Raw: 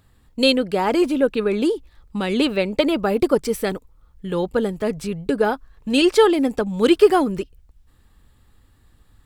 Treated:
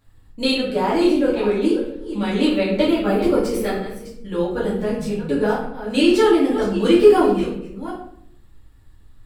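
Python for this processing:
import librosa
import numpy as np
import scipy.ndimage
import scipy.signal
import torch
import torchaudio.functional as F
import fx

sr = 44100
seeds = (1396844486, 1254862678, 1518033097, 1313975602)

y = fx.reverse_delay(x, sr, ms=376, wet_db=-11.5)
y = fx.room_shoebox(y, sr, seeds[0], volume_m3=120.0, walls='mixed', distance_m=2.3)
y = y * 10.0 ** (-9.5 / 20.0)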